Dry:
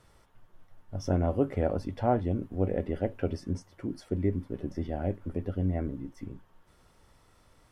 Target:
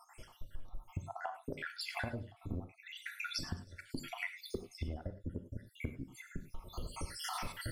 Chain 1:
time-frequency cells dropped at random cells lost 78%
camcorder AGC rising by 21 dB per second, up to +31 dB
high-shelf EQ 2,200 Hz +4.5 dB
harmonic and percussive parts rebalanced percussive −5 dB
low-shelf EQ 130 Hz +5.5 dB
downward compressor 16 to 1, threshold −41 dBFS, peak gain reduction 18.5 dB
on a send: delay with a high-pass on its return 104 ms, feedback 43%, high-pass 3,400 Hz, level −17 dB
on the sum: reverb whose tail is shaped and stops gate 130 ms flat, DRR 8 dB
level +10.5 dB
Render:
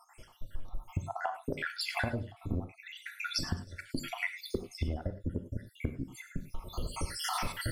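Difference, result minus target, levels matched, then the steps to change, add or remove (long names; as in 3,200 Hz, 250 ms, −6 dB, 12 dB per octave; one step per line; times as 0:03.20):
downward compressor: peak gain reduction −6.5 dB
change: downward compressor 16 to 1, threshold −48 dBFS, peak gain reduction 25 dB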